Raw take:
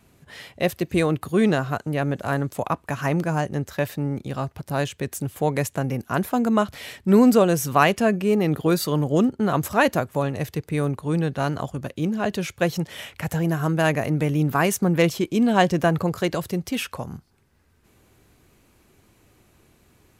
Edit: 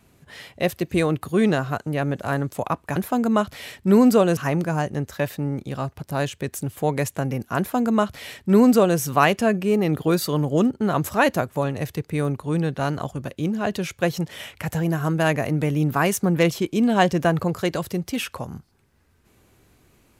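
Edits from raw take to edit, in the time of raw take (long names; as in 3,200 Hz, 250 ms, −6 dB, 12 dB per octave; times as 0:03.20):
0:06.17–0:07.58: duplicate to 0:02.96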